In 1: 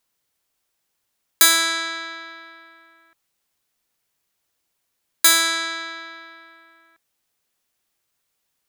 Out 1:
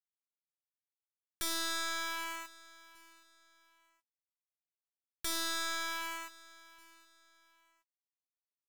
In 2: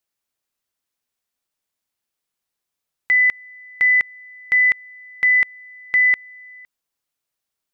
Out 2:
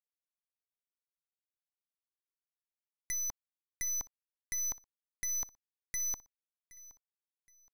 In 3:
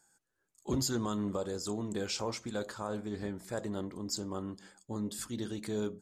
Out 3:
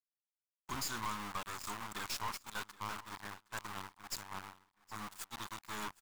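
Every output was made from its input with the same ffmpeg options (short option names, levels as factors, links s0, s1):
-filter_complex "[0:a]acrossover=split=5300[s0][s1];[s1]acompressor=threshold=0.0316:ratio=4:attack=1:release=60[s2];[s0][s2]amix=inputs=2:normalize=0,aeval=exprs='val(0)*gte(abs(val(0)),0.0158)':c=same,lowshelf=f=720:t=q:w=3:g=-11.5,acompressor=threshold=0.0178:ratio=2,aeval=exprs='0.224*(cos(1*acos(clip(val(0)/0.224,-1,1)))-cos(1*PI/2))+0.0891*(cos(2*acos(clip(val(0)/0.224,-1,1)))-cos(2*PI/2))+0.0316*(cos(4*acos(clip(val(0)/0.224,-1,1)))-cos(4*PI/2))+0.00282*(cos(5*acos(clip(val(0)/0.224,-1,1)))-cos(5*PI/2))+0.0891*(cos(7*acos(clip(val(0)/0.224,-1,1)))-cos(7*PI/2))':c=same,agate=range=0.0224:threshold=0.0178:ratio=3:detection=peak,aeval=exprs='(tanh(44.7*val(0)+0.7)-tanh(0.7))/44.7':c=same,asplit=2[s3][s4];[s4]aecho=0:1:770|1540:0.0944|0.0302[s5];[s3][s5]amix=inputs=2:normalize=0"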